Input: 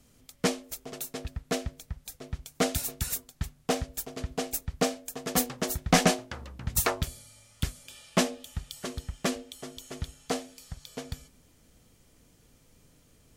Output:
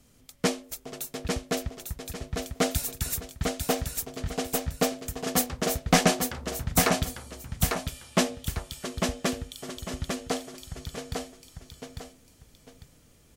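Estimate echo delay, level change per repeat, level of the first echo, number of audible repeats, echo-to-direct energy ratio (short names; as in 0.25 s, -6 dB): 0.849 s, -10.0 dB, -4.5 dB, 2, -4.0 dB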